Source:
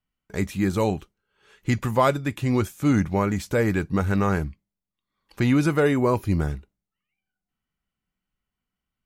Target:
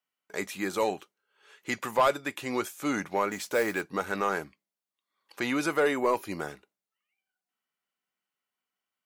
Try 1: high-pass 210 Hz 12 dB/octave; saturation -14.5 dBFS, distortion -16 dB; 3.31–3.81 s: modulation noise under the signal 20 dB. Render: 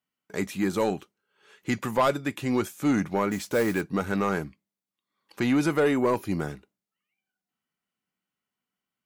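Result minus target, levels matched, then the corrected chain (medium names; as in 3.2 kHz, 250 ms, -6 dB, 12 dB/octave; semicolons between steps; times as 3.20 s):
250 Hz band +4.5 dB
high-pass 460 Hz 12 dB/octave; saturation -14.5 dBFS, distortion -17 dB; 3.31–3.81 s: modulation noise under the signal 20 dB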